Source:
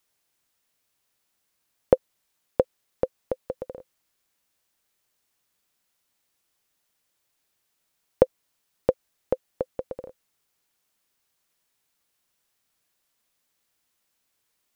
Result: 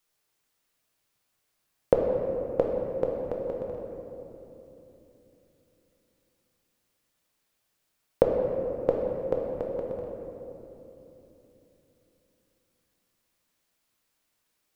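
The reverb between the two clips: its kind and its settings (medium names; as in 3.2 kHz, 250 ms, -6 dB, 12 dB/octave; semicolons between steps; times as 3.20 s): simulated room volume 180 m³, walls hard, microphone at 0.5 m; trim -3 dB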